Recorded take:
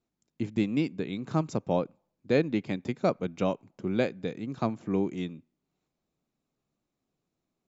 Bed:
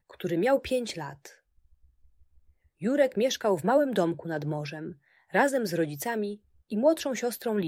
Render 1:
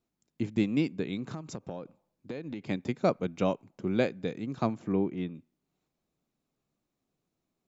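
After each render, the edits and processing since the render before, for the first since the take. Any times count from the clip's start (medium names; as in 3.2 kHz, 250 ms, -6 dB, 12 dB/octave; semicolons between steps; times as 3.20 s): 1.27–2.66 s: compression 16:1, threshold -33 dBFS; 4.92–5.35 s: distance through air 280 m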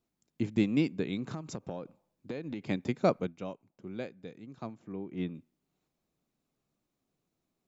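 3.21–5.21 s: dip -12 dB, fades 0.13 s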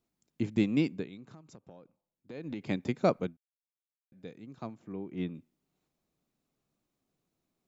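0.93–2.44 s: dip -13 dB, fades 0.17 s; 3.37–4.12 s: mute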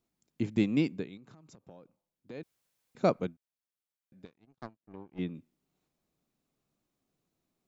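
1.17–1.65 s: compression, threshold -50 dBFS; 2.43–2.95 s: room tone; 4.25–5.19 s: power-law waveshaper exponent 2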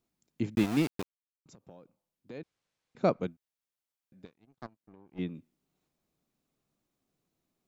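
0.55–1.46 s: small samples zeroed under -32 dBFS; 2.38–3.21 s: distance through air 82 m; 4.66–5.12 s: compression 12:1, threshold -49 dBFS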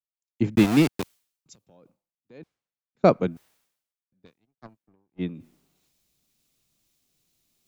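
reverse; upward compressor, threshold -40 dBFS; reverse; three bands expanded up and down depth 100%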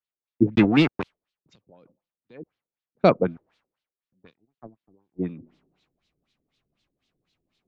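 LFO low-pass sine 4 Hz 350–4000 Hz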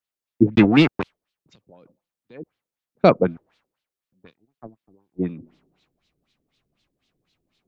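trim +3.5 dB; peak limiter -2 dBFS, peak gain reduction 1 dB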